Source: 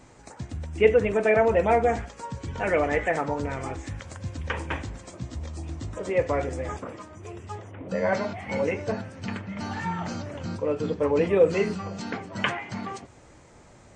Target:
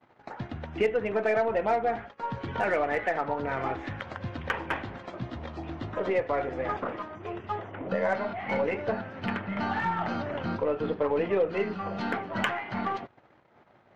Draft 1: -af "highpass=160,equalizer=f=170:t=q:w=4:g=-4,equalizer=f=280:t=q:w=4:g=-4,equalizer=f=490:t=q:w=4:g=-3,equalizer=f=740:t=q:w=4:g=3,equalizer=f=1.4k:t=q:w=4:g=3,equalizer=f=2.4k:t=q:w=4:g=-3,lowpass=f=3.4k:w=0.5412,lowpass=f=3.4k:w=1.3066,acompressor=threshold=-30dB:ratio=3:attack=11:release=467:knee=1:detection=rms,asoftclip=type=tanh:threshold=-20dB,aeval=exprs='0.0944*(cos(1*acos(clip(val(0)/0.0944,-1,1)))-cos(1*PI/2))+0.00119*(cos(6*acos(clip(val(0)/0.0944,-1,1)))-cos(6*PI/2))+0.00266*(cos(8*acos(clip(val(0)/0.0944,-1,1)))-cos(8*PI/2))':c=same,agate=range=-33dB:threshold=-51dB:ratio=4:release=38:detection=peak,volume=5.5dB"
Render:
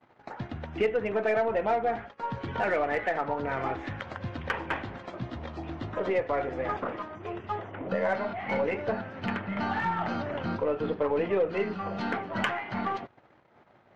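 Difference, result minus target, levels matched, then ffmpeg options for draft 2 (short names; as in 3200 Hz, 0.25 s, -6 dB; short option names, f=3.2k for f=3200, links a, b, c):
soft clip: distortion +17 dB
-af "highpass=160,equalizer=f=170:t=q:w=4:g=-4,equalizer=f=280:t=q:w=4:g=-4,equalizer=f=490:t=q:w=4:g=-3,equalizer=f=740:t=q:w=4:g=3,equalizer=f=1.4k:t=q:w=4:g=3,equalizer=f=2.4k:t=q:w=4:g=-3,lowpass=f=3.4k:w=0.5412,lowpass=f=3.4k:w=1.3066,acompressor=threshold=-30dB:ratio=3:attack=11:release=467:knee=1:detection=rms,asoftclip=type=tanh:threshold=-10.5dB,aeval=exprs='0.0944*(cos(1*acos(clip(val(0)/0.0944,-1,1)))-cos(1*PI/2))+0.00119*(cos(6*acos(clip(val(0)/0.0944,-1,1)))-cos(6*PI/2))+0.00266*(cos(8*acos(clip(val(0)/0.0944,-1,1)))-cos(8*PI/2))':c=same,agate=range=-33dB:threshold=-51dB:ratio=4:release=38:detection=peak,volume=5.5dB"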